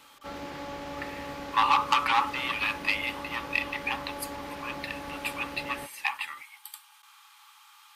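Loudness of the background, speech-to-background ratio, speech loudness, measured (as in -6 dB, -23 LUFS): -39.5 LUFS, 10.5 dB, -29.0 LUFS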